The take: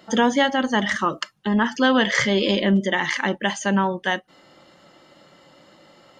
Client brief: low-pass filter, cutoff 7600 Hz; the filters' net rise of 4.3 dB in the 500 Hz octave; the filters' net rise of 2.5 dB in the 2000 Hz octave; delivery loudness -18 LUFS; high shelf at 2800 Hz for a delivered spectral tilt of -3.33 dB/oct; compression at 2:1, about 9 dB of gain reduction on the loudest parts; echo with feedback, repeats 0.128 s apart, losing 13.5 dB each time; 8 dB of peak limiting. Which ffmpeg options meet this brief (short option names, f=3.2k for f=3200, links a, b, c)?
-af "lowpass=7.6k,equalizer=f=500:t=o:g=5,equalizer=f=2k:t=o:g=4,highshelf=f=2.8k:g=-4,acompressor=threshold=-28dB:ratio=2,alimiter=limit=-19dB:level=0:latency=1,aecho=1:1:128|256:0.211|0.0444,volume=11dB"